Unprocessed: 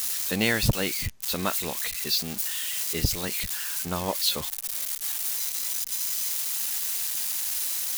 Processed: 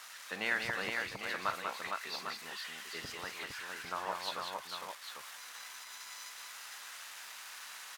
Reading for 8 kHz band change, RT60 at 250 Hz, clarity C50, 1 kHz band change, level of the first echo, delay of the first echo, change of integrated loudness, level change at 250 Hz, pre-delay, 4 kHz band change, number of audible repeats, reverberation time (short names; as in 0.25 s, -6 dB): -20.0 dB, none, none, -2.5 dB, -12.5 dB, 48 ms, -13.5 dB, -18.0 dB, none, -12.5 dB, 4, none